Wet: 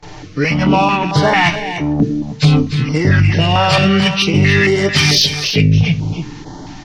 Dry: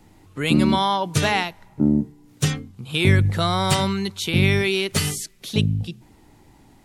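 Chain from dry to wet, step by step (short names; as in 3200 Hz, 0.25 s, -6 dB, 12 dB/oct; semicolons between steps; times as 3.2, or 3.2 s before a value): nonlinear frequency compression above 1500 Hz 1.5:1; gate with hold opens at -43 dBFS; low shelf 120 Hz -5.5 dB; comb 6.7 ms, depth 44%; reverse; compressor 6:1, threshold -29 dBFS, peak gain reduction 15 dB; reverse; sine folder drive 4 dB, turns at -18.5 dBFS; flange 0.41 Hz, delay 6.7 ms, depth 7.8 ms, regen +75%; on a send: echo 0.294 s -9.5 dB; on the sum: maximiser +21 dB; stepped notch 4.5 Hz 240–2500 Hz; gain -2 dB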